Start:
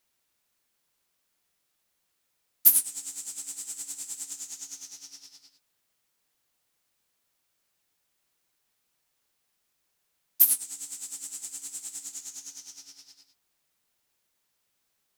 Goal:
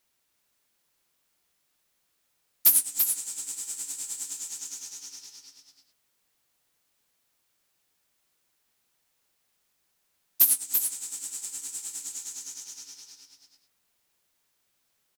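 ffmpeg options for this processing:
-af "asoftclip=type=hard:threshold=-13dB,aecho=1:1:337:0.501,volume=1.5dB"

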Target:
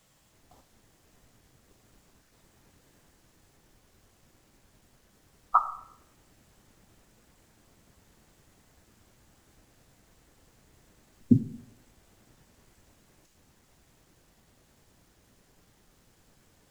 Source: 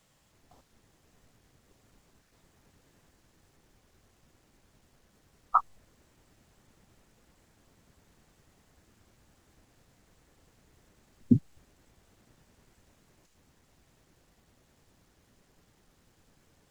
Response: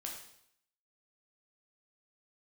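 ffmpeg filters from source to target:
-filter_complex "[0:a]asplit=2[a][b];[1:a]atrim=start_sample=2205,highshelf=f=6.7k:g=8.5[c];[b][c]afir=irnorm=-1:irlink=0,volume=-2dB[d];[a][d]amix=inputs=2:normalize=0,volume=-1.5dB"

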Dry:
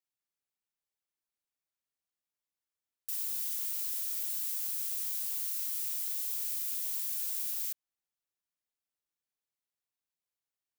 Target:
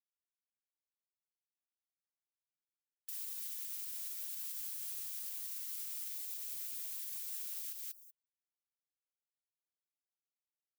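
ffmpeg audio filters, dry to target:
-af "highshelf=f=4.3k:g=-4,aecho=1:1:190|380|570:0.562|0.09|0.0144,alimiter=level_in=11.5dB:limit=-24dB:level=0:latency=1:release=278,volume=-11.5dB,bandreject=f=249.4:t=h:w=4,bandreject=f=498.8:t=h:w=4,bandreject=f=748.2:t=h:w=4,bandreject=f=997.6:t=h:w=4,bandreject=f=1.247k:t=h:w=4,bandreject=f=1.4964k:t=h:w=4,bandreject=f=1.7458k:t=h:w=4,bandreject=f=1.9952k:t=h:w=4,bandreject=f=2.2446k:t=h:w=4,bandreject=f=2.494k:t=h:w=4,bandreject=f=2.7434k:t=h:w=4,bandreject=f=2.9928k:t=h:w=4,bandreject=f=3.2422k:t=h:w=4,bandreject=f=3.4916k:t=h:w=4,bandreject=f=3.741k:t=h:w=4,bandreject=f=3.9904k:t=h:w=4,bandreject=f=4.2398k:t=h:w=4,bandreject=f=4.4892k:t=h:w=4,bandreject=f=4.7386k:t=h:w=4,bandreject=f=4.988k:t=h:w=4,bandreject=f=5.2374k:t=h:w=4,bandreject=f=5.4868k:t=h:w=4,bandreject=f=5.7362k:t=h:w=4,bandreject=f=5.9856k:t=h:w=4,bandreject=f=6.235k:t=h:w=4,bandreject=f=6.4844k:t=h:w=4,bandreject=f=6.7338k:t=h:w=4,bandreject=f=6.9832k:t=h:w=4,bandreject=f=7.2326k:t=h:w=4,afftfilt=real='re*gte(hypot(re,im),0.000501)':imag='im*gte(hypot(re,im),0.000501)':win_size=1024:overlap=0.75,volume=3dB"

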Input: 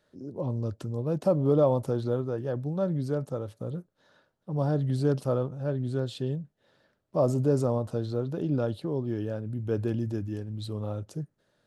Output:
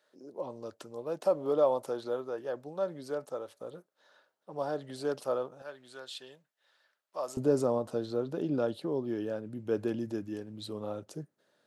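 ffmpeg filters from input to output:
-af "asetnsamples=n=441:p=0,asendcmd='5.62 highpass f 1100;7.37 highpass f 250',highpass=510"

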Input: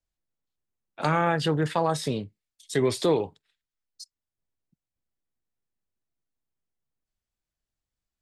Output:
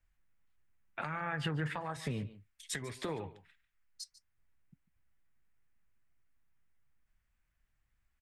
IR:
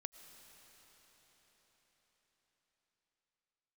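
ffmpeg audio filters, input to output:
-af "highshelf=f=2.9k:t=q:w=1.5:g=-12,acompressor=threshold=-36dB:ratio=6,equalizer=f=440:w=0.47:g=-12.5,alimiter=level_in=13dB:limit=-24dB:level=0:latency=1:release=467,volume=-13dB,aecho=1:1:146:0.15,flanger=delay=2.1:depth=4.5:regen=-74:speed=1.6:shape=triangular,volume=17dB"

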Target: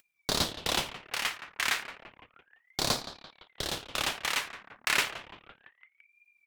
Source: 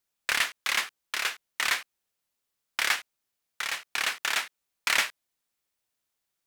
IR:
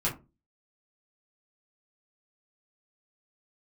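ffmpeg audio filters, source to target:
-filter_complex "[0:a]asplit=2[a][b];[b]adelay=170,lowpass=f=1.1k:p=1,volume=-8dB,asplit=2[c][d];[d]adelay=170,lowpass=f=1.1k:p=1,volume=0.48,asplit=2[e][f];[f]adelay=170,lowpass=f=1.1k:p=1,volume=0.48,asplit=2[g][h];[h]adelay=170,lowpass=f=1.1k:p=1,volume=0.48,asplit=2[i][j];[j]adelay=170,lowpass=f=1.1k:p=1,volume=0.48,asplit=2[k][l];[l]adelay=170,lowpass=f=1.1k:p=1,volume=0.48[m];[a][c][e][g][i][k][m]amix=inputs=7:normalize=0,asplit=2[n][o];[1:a]atrim=start_sample=2205,lowshelf=f=460:g=6.5[p];[o][p]afir=irnorm=-1:irlink=0,volume=-21dB[q];[n][q]amix=inputs=2:normalize=0,asubboost=boost=4:cutoff=180,acompressor=mode=upward:threshold=-32dB:ratio=2.5,anlmdn=0.01,aeval=exprs='val(0)*sin(2*PI*1300*n/s+1300*0.85/0.32*sin(2*PI*0.32*n/s))':c=same"

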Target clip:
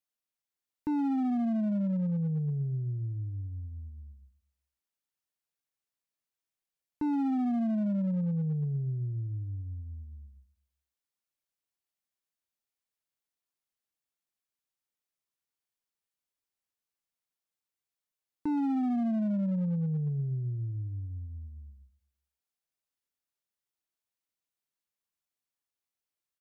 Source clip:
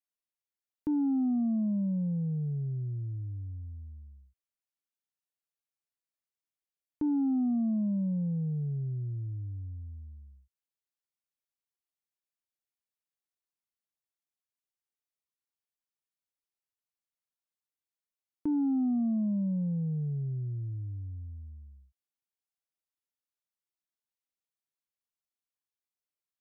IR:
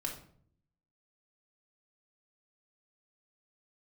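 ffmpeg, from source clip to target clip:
-filter_complex "[0:a]asplit=2[a][b];[b]adelay=120,lowpass=f=890:p=1,volume=-19dB,asplit=2[c][d];[d]adelay=120,lowpass=f=890:p=1,volume=0.45,asplit=2[e][f];[f]adelay=120,lowpass=f=890:p=1,volume=0.45,asplit=2[g][h];[h]adelay=120,lowpass=f=890:p=1,volume=0.45[i];[a][c][e][g][i]amix=inputs=5:normalize=0,volume=28.5dB,asoftclip=hard,volume=-28.5dB,volume=1.5dB"

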